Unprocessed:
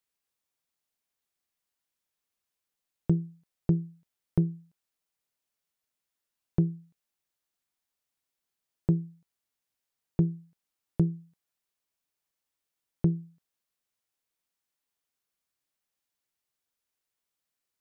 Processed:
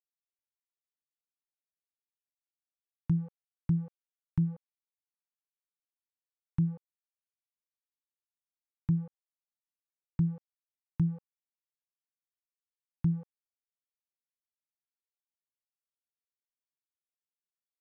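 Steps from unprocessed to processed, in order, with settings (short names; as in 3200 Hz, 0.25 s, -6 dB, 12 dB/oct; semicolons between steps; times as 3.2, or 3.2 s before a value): Chebyshev band-stop 300–880 Hz, order 4; sample gate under -43 dBFS; treble ducked by the level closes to 610 Hz, closed at -26 dBFS; limiter -19.5 dBFS, peak gain reduction 4.5 dB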